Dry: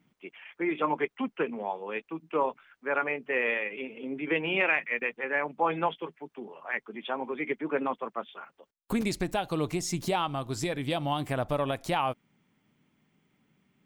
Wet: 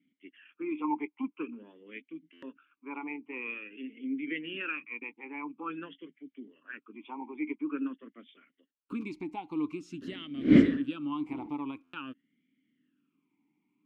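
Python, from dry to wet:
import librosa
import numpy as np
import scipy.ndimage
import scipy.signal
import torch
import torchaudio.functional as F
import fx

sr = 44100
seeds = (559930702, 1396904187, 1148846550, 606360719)

y = fx.dmg_wind(x, sr, seeds[0], corner_hz=460.0, level_db=-26.0, at=(10.01, 11.48), fade=0.02)
y = fx.buffer_glitch(y, sr, at_s=(2.32, 11.83), block=512, repeats=8)
y = fx.vowel_sweep(y, sr, vowels='i-u', hz=0.48)
y = F.gain(torch.from_numpy(y), 4.0).numpy()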